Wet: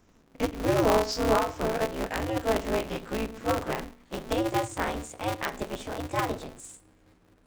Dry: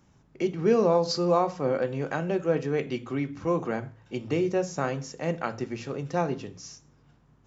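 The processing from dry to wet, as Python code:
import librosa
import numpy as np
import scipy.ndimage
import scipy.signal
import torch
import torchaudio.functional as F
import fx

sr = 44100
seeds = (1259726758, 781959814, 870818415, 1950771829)

y = fx.pitch_glide(x, sr, semitones=6.0, runs='starting unshifted')
y = y * np.sign(np.sin(2.0 * np.pi * 110.0 * np.arange(len(y)) / sr))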